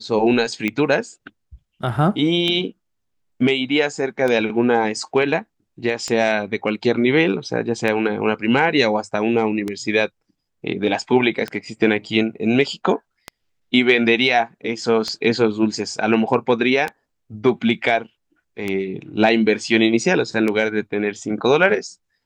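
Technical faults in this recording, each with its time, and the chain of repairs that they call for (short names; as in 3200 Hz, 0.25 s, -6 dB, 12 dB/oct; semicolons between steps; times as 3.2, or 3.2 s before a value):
tick 33 1/3 rpm -10 dBFS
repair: de-click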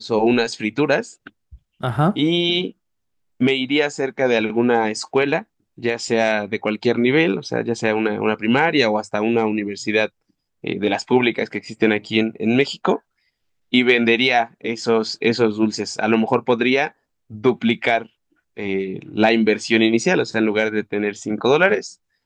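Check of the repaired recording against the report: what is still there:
none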